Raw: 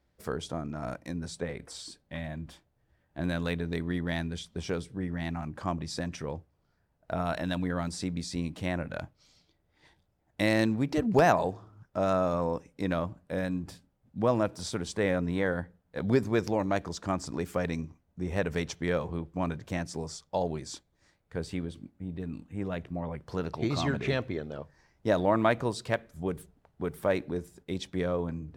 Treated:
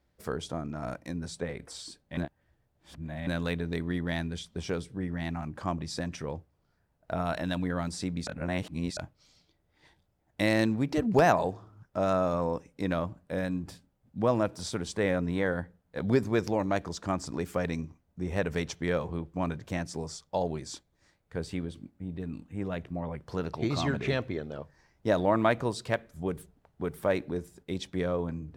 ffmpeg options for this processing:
-filter_complex "[0:a]asplit=5[a][b][c][d][e];[a]atrim=end=2.172[f];[b]atrim=start=2.168:end=3.272,asetpts=PTS-STARTPTS,areverse[g];[c]atrim=start=3.268:end=8.272[h];[d]atrim=start=8.268:end=8.972,asetpts=PTS-STARTPTS,areverse[i];[e]atrim=start=8.968[j];[f][g]acrossfade=d=0.004:c1=hsin:c2=hsin[k];[k][h]acrossfade=d=0.004:c1=hsin:c2=hsin[l];[l][i]acrossfade=d=0.004:c1=hsin:c2=hsin[m];[m][j]acrossfade=d=0.004:c1=hsin:c2=hsin"

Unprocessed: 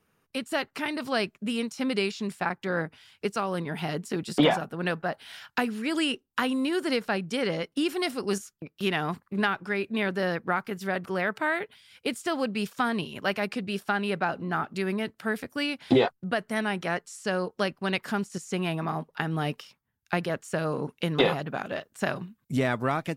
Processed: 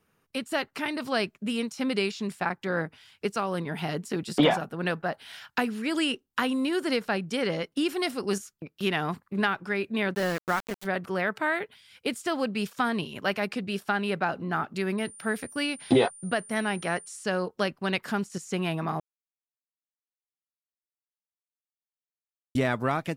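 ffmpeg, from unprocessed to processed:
-filter_complex "[0:a]asplit=3[a][b][c];[a]afade=t=out:st=10.13:d=0.02[d];[b]aeval=exprs='val(0)*gte(abs(val(0)),0.0251)':c=same,afade=t=in:st=10.13:d=0.02,afade=t=out:st=10.84:d=0.02[e];[c]afade=t=in:st=10.84:d=0.02[f];[d][e][f]amix=inputs=3:normalize=0,asettb=1/sr,asplit=3[g][h][i];[g]atrim=end=14.984[j];[h]atrim=start=14.98:end=17.24,asetpts=PTS-STARTPTS,afade=t=in:d=0.004:c=qsin,afade=t=out:st=2.256:d=0.004:c=qsin,aeval=exprs='val(0)+0.00562*sin(2*PI*9200*n/s)':c=same[k];[i]atrim=start=17.236[l];[j][k]acrossfade=d=0.004:c1=hsin:c2=qsin[m];[m][l]acrossfade=d=0.004:c1=qsin:c2=hsin,asplit=3[n][o][p];[n]atrim=end=19,asetpts=PTS-STARTPTS,afade=t=out:st=18.996:d=0.004:c=hsin[q];[o]atrim=start=19:end=22.55,asetpts=PTS-STARTPTS,volume=0[r];[p]atrim=start=22.55,asetpts=PTS-STARTPTS,afade=t=in:d=0.004:c=hsin[s];[q][r][s]concat=n=3:v=0:a=1"

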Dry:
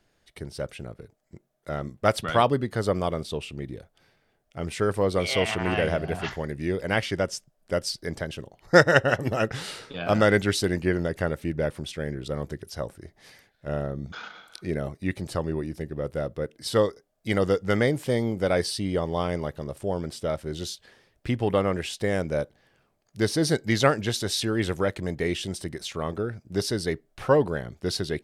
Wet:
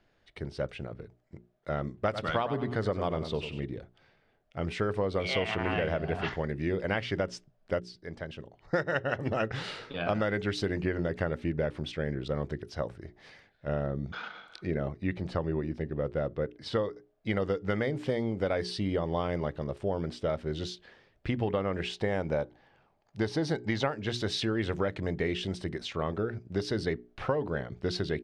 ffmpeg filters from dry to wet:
-filter_complex "[0:a]asplit=3[a][b][c];[a]afade=t=out:st=2.05:d=0.02[d];[b]aecho=1:1:97|194|291:0.282|0.0902|0.0289,afade=t=in:st=2.05:d=0.02,afade=t=out:st=3.64:d=0.02[e];[c]afade=t=in:st=3.64:d=0.02[f];[d][e][f]amix=inputs=3:normalize=0,asettb=1/sr,asplit=3[g][h][i];[g]atrim=end=14.674[j];[h]atrim=start=14.67:end=17.37,asetpts=PTS-STARTPTS,afade=t=in:d=0.004:c=qsin,afade=t=out:st=2.696:d=0.004:c=qsin,highshelf=f=7k:g=-11[k];[i]atrim=start=17.366[l];[j][k]acrossfade=d=0.004:c1=hsin:c2=qsin[m];[m][l]acrossfade=d=0.004:c1=qsin:c2=hsin,asettb=1/sr,asplit=3[n][o][p];[n]atrim=end=21.954[q];[o]atrim=start=21.95:end=23.93,asetpts=PTS-STARTPTS,afade=t=in:d=0.004:c=qsin,afade=t=out:st=1.976:d=0.004:c=qsin,equalizer=f=850:w=3.4:g=8.5[r];[p]atrim=start=23.926[s];[q][r]acrossfade=d=0.004:c1=hsin:c2=qsin[t];[t][s]acrossfade=d=0.004:c1=qsin:c2=hsin,asplit=2[u][v];[u]atrim=end=7.8,asetpts=PTS-STARTPTS,afade=t=out:st=7.796:d=0.004:c=hsin:silence=0.199526[w];[v]atrim=start=7.8,asetpts=PTS-STARTPTS,afade=t=in:d=1.41:silence=0.199526[x];[w][x]concat=n=2:v=0:a=1,lowpass=3.7k,bandreject=f=60:t=h:w=6,bandreject=f=120:t=h:w=6,bandreject=f=180:t=h:w=6,bandreject=f=240:t=h:w=6,bandreject=f=300:t=h:w=6,bandreject=f=360:t=h:w=6,bandreject=f=420:t=h:w=6,acompressor=threshold=-25dB:ratio=12"

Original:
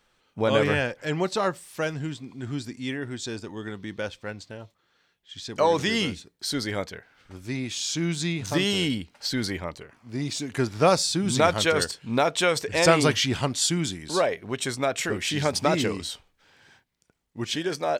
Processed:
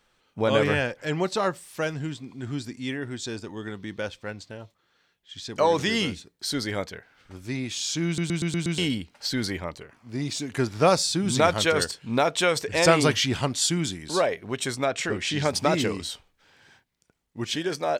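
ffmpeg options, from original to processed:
-filter_complex "[0:a]asettb=1/sr,asplit=3[a][b][c];[a]atrim=end=14.844[d];[b]atrim=start=14.84:end=15.45,asetpts=PTS-STARTPTS,afade=t=in:d=0.004:c=qsin,afade=t=out:st=0.606:d=0.004:c=qsin,lowpass=7.6k[e];[c]atrim=start=15.446[f];[d][e]acrossfade=d=0.004:c1=hsin:c2=qsin[g];[g][f]acrossfade=d=0.004:c1=qsin:c2=hsin,asplit=7[h][i][j][k][l][m][n];[h]atrim=end=8.182[o];[i]atrim=start=8.058:end=8.182[p];[j]atrim=start=8.058:end=8.182[q];[k]atrim=start=8.058:end=8.182[r];[l]atrim=start=8.058:end=8.182[s];[m]atrim=start=8.058:end=8.182[t];[n]atrim=start=8.778[u];[o][p]acrossfade=d=0.004:c1=hsin:c2=hsin[v];[v][q]acrossfade=d=0.004:c1=hsin:c2=hsin[w];[w][r]acrossfade=d=0.004:c1=hsin:c2=hsin[x];[x][s]acrossfade=d=0.004:c1=hsin:c2=hsin[y];[y][t]acrossfade=d=0.004:c1=hsin:c2=hsin[z];[z][u]acrossfade=d=0.004:c1=hsin:c2=hsin"

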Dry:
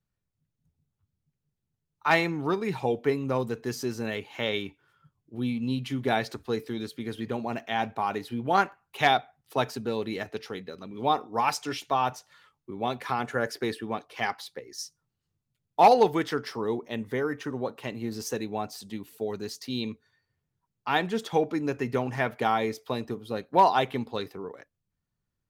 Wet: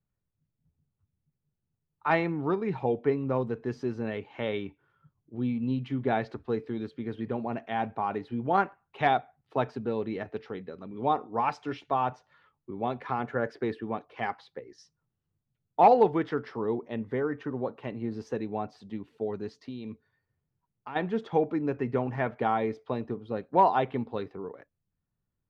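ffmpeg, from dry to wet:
-filter_complex "[0:a]asplit=3[a][b][c];[a]afade=t=out:st=19.6:d=0.02[d];[b]acompressor=threshold=-33dB:ratio=6:attack=3.2:release=140:knee=1:detection=peak,afade=t=in:st=19.6:d=0.02,afade=t=out:st=20.95:d=0.02[e];[c]afade=t=in:st=20.95:d=0.02[f];[d][e][f]amix=inputs=3:normalize=0,lowpass=3.5k,highshelf=f=2.1k:g=-11.5"

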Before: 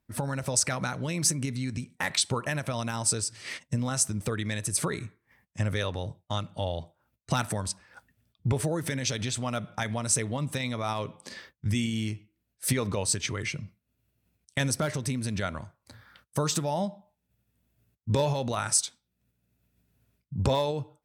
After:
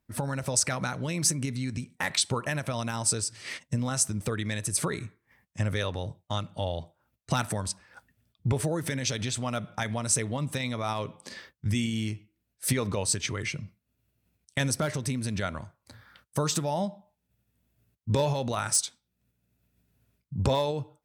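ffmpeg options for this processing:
-filter_complex "[0:a]asettb=1/sr,asplit=3[a][b][c];[a]atrim=end=18.184[d];[b]atrim=start=18.18:end=18.77,asetpts=PTS-STARTPTS,afade=t=in:d=0.004:c=qsin,afade=t=out:st=0.586:d=0.004:c=qsin,volume=17.5dB,asoftclip=hard,volume=-17.5dB[e];[c]atrim=start=18.766[f];[d][e]acrossfade=d=0.004:c1=hsin:c2=qsin[g];[g][f]acrossfade=d=0.004:c1=qsin:c2=hsin"

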